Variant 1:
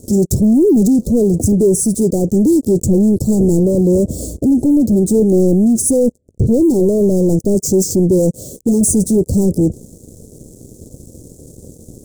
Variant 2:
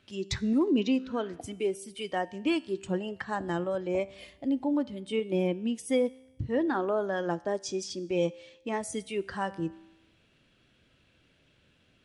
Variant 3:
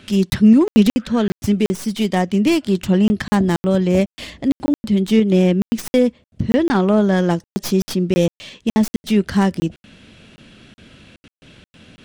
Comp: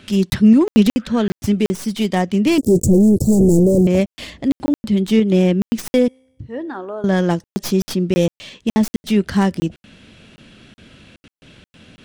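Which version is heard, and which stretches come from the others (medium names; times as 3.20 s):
3
2.58–3.87 s: from 1
6.08–7.04 s: from 2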